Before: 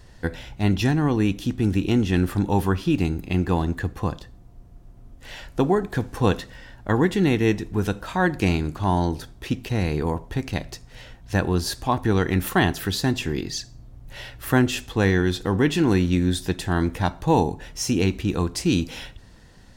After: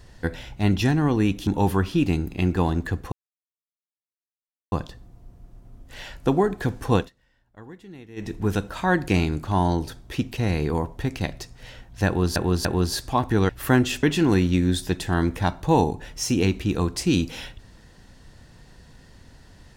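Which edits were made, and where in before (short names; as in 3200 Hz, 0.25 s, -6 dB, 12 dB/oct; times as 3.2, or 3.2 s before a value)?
1.47–2.39 cut
4.04 insert silence 1.60 s
6.27–7.63 dip -23 dB, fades 0.15 s
11.39–11.68 loop, 3 plays
12.23–14.32 cut
14.86–15.62 cut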